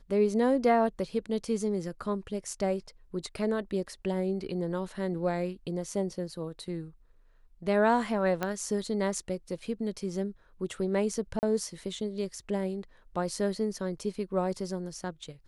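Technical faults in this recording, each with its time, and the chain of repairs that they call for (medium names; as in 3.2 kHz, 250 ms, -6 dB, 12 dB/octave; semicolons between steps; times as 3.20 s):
8.43 s: pop -16 dBFS
11.39–11.43 s: dropout 39 ms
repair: de-click; interpolate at 11.39 s, 39 ms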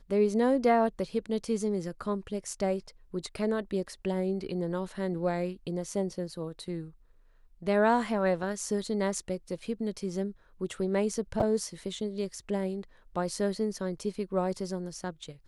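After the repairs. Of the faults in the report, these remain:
8.43 s: pop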